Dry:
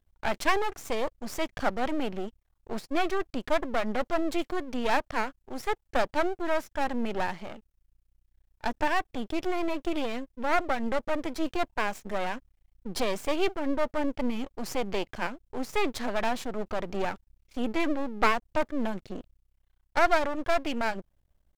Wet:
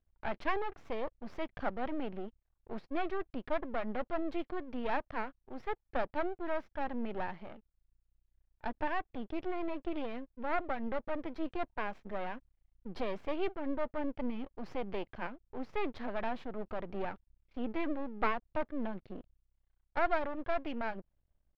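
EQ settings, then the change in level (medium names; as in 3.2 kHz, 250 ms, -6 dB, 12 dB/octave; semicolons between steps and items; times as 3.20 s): distance through air 330 m; -6.5 dB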